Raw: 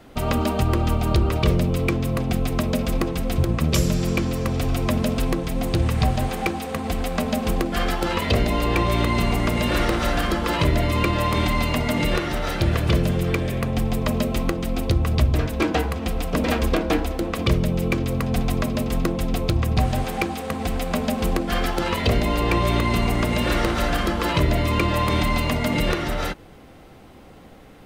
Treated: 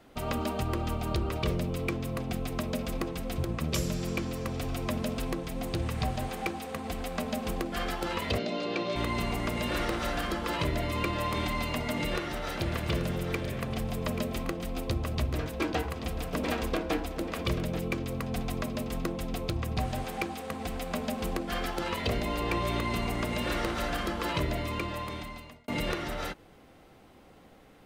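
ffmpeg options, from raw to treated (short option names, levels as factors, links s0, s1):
-filter_complex "[0:a]asettb=1/sr,asplit=3[s0][s1][s2];[s0]atrim=end=8.384[s3];[s1]atrim=start=8.38:end=8.96,asetpts=PTS-STARTPTS,afade=t=in:d=0.004:c=qsin,afade=t=out:st=0.576:d=0.004:c=qsin,highpass=f=160:w=0.5412,highpass=f=160:w=1.3066,equalizer=f=600:t=q:w=4:g=4,equalizer=f=950:t=q:w=4:g=-10,equalizer=f=1900:t=q:w=4:g=-6,equalizer=f=4200:t=q:w=4:g=4,lowpass=f=6100:w=0.5412,lowpass=f=6100:w=1.3066[s4];[s2]atrim=start=8.956[s5];[s3][s4]acrossfade=d=0.004:c1=hsin:c2=qsin[s6];[s6][s5]acrossfade=d=0.004:c1=qsin:c2=hsin,asettb=1/sr,asplit=3[s7][s8][s9];[s7]atrim=end=11.744[s10];[s8]atrim=start=11.74:end=17.8,asetpts=PTS-STARTPTS,afade=t=in:d=0.004:c=qsin,afade=t=out:st=6.056:d=0.004:c=qsin,aecho=1:1:834:0.316,atrim=end_sample=267246[s11];[s9]atrim=start=17.796[s12];[s10][s11]acrossfade=d=0.004:c1=hsin:c2=qsin[s13];[s13][s12]acrossfade=d=0.004:c1=qsin:c2=hsin,asplit=2[s14][s15];[s14]atrim=end=25.68,asetpts=PTS-STARTPTS,afade=t=out:st=24.42:d=1.26[s16];[s15]atrim=start=25.68,asetpts=PTS-STARTPTS,afade=t=in:d=0.004:c=hsin[s17];[s16][s17]concat=n=2:v=0:a=1,lowshelf=f=200:g=-4.5,volume=0.398"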